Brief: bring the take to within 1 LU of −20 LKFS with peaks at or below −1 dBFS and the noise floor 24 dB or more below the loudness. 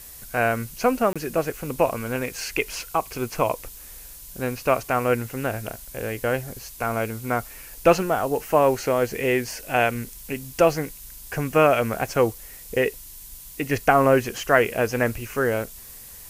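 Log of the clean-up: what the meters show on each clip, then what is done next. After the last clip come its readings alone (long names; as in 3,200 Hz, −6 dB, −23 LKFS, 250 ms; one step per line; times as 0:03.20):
number of dropouts 1; longest dropout 26 ms; background noise floor −42 dBFS; target noise floor −48 dBFS; integrated loudness −23.5 LKFS; sample peak −2.5 dBFS; target loudness −20.0 LKFS
→ repair the gap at 0:01.13, 26 ms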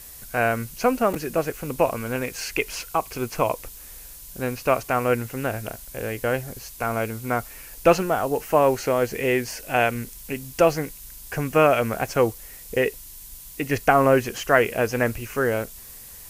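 number of dropouts 0; background noise floor −42 dBFS; target noise floor −48 dBFS
→ noise reduction from a noise print 6 dB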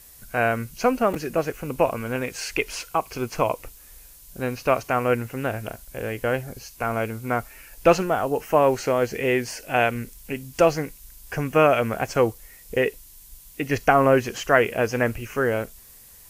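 background noise floor −48 dBFS; integrated loudness −23.5 LKFS; sample peak −2.5 dBFS; target loudness −20.0 LKFS
→ level +3.5 dB
brickwall limiter −1 dBFS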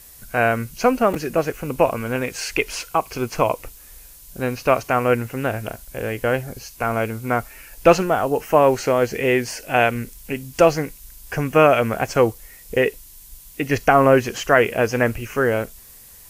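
integrated loudness −20.5 LKFS; sample peak −1.0 dBFS; background noise floor −45 dBFS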